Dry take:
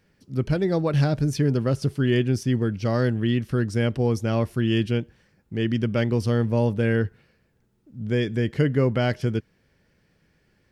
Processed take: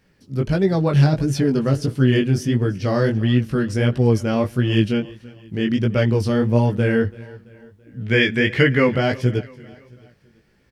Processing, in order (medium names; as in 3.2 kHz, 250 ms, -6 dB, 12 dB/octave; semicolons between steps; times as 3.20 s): 7.99–8.94 s: peaking EQ 2.2 kHz +14 dB 1.5 oct; feedback delay 334 ms, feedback 47%, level -21 dB; chorus 1.5 Hz, delay 15.5 ms, depth 6.4 ms; trim +7 dB